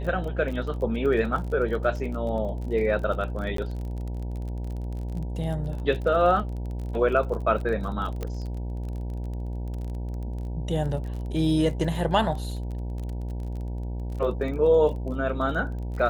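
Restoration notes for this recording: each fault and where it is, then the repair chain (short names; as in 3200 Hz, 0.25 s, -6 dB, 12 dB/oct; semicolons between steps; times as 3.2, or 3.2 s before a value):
buzz 60 Hz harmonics 16 -31 dBFS
crackle 32/s -34 dBFS
3.57–3.58 gap 13 ms
8.23 pop -18 dBFS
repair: de-click; de-hum 60 Hz, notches 16; interpolate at 3.57, 13 ms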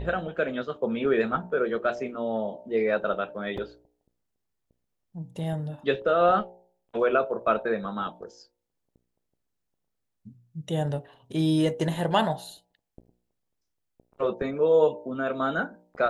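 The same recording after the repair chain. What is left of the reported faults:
none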